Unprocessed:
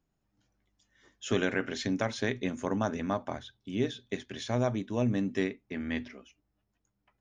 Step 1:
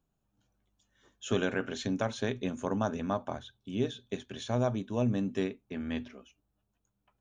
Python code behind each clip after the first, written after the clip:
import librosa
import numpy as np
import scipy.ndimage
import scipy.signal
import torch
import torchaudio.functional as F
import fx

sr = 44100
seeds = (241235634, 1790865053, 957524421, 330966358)

y = fx.graphic_eq_31(x, sr, hz=(315, 2000, 5000), db=(-4, -11, -8))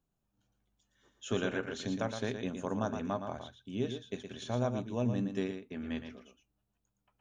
y = x + 10.0 ** (-7.5 / 20.0) * np.pad(x, (int(116 * sr / 1000.0), 0))[:len(x)]
y = y * librosa.db_to_amplitude(-3.5)